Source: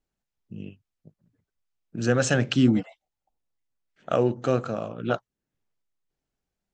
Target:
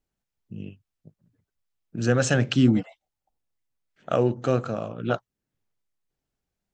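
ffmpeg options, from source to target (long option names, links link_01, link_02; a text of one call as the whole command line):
ffmpeg -i in.wav -af "equalizer=frequency=99:width=1.1:gain=3" out.wav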